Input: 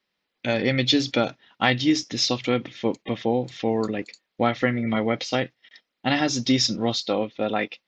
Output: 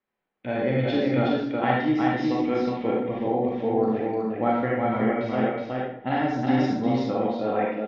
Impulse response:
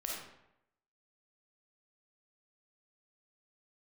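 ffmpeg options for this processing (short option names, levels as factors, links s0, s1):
-filter_complex "[0:a]lowpass=1500,aecho=1:1:369:0.708[s0];[1:a]atrim=start_sample=2205,asetrate=52920,aresample=44100[s1];[s0][s1]afir=irnorm=-1:irlink=0"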